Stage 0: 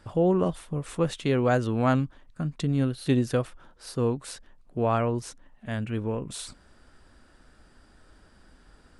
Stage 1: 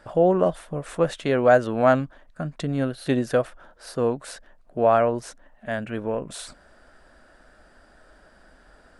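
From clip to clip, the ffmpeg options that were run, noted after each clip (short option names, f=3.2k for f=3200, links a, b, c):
-af "equalizer=f=100:t=o:w=0.67:g=-8,equalizer=f=630:t=o:w=0.67:g=11,equalizer=f=1.6k:t=o:w=0.67:g=7"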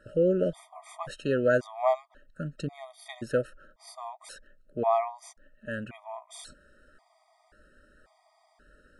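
-af "afftfilt=real='re*gt(sin(2*PI*0.93*pts/sr)*(1-2*mod(floor(b*sr/1024/630),2)),0)':imag='im*gt(sin(2*PI*0.93*pts/sr)*(1-2*mod(floor(b*sr/1024/630),2)),0)':win_size=1024:overlap=0.75,volume=-4.5dB"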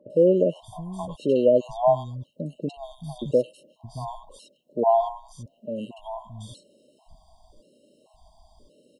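-filter_complex "[0:a]acrossover=split=150|1300[a][b][c];[c]adelay=100[d];[a]adelay=620[e];[e][b][d]amix=inputs=3:normalize=0,acrossover=split=2900[f][g];[g]acompressor=threshold=-57dB:ratio=4:attack=1:release=60[h];[f][h]amix=inputs=2:normalize=0,afftfilt=real='re*(1-between(b*sr/4096,1100,2700))':imag='im*(1-between(b*sr/4096,1100,2700))':win_size=4096:overlap=0.75,volume=6.5dB"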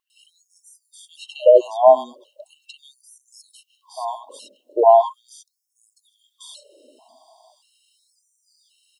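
-af "afftfilt=real='re*gte(b*sr/1024,210*pow(5300/210,0.5+0.5*sin(2*PI*0.39*pts/sr)))':imag='im*gte(b*sr/1024,210*pow(5300/210,0.5+0.5*sin(2*PI*0.39*pts/sr)))':win_size=1024:overlap=0.75,volume=8dB"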